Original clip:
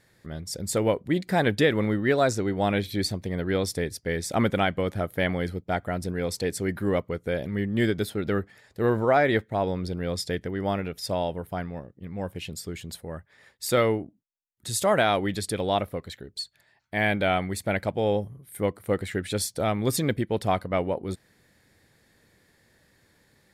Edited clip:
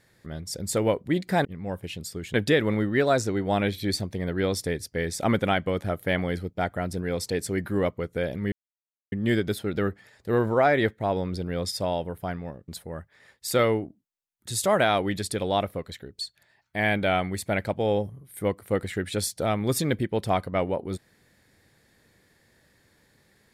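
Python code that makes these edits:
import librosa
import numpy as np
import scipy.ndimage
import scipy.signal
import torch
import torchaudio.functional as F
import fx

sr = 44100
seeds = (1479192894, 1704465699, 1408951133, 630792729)

y = fx.edit(x, sr, fx.insert_silence(at_s=7.63, length_s=0.6),
    fx.cut(start_s=10.23, length_s=0.78),
    fx.move(start_s=11.97, length_s=0.89, to_s=1.45), tone=tone)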